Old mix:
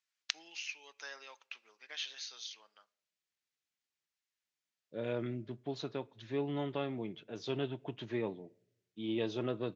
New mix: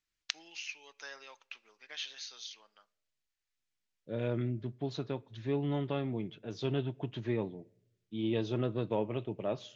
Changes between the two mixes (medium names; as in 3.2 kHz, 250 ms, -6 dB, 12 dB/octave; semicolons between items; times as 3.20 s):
second voice: entry -0.85 s; master: remove high-pass 290 Hz 6 dB/octave